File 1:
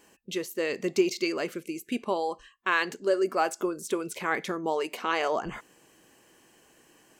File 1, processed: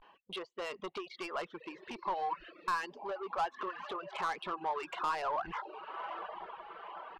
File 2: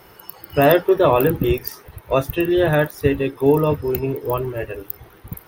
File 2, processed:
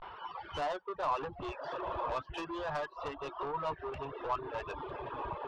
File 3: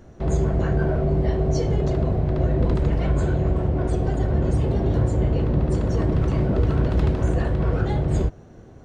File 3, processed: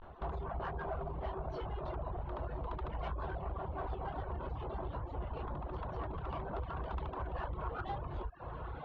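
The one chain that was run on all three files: echo that smears into a reverb 990 ms, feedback 58%, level -15 dB; vibrato 0.34 Hz 65 cents; steep low-pass 3.5 kHz 36 dB/octave; reverb removal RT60 0.51 s; compression 5:1, threshold -28 dBFS; reverb removal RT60 0.54 s; bass shelf 450 Hz -5.5 dB; saturation -33 dBFS; ten-band graphic EQ 125 Hz -8 dB, 250 Hz -9 dB, 500 Hz -5 dB, 1 kHz +10 dB, 2 kHz -8 dB; trim +3 dB

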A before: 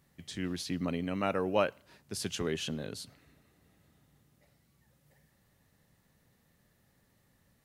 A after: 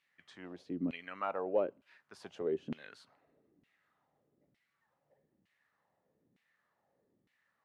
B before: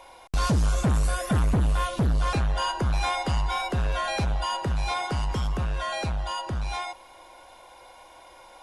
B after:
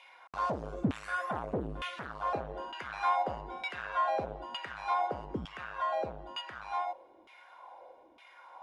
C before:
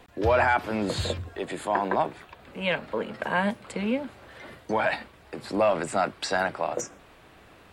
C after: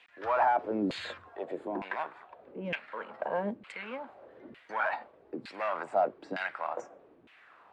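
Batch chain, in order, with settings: in parallel at -10 dB: wavefolder -21 dBFS; on the sum: LFO band-pass saw down 1.1 Hz 240–2700 Hz

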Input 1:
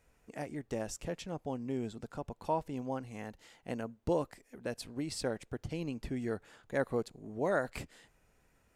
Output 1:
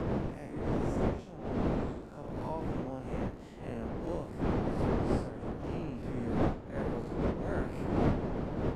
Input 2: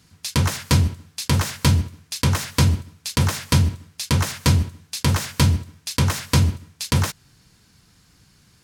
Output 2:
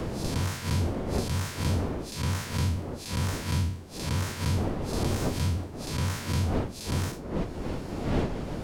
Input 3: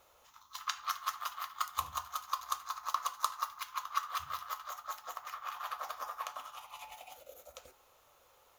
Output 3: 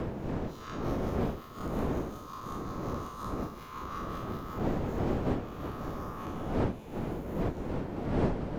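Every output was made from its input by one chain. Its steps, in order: spectral blur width 118 ms; wind noise 390 Hz -26 dBFS; three bands compressed up and down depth 70%; trim -7.5 dB

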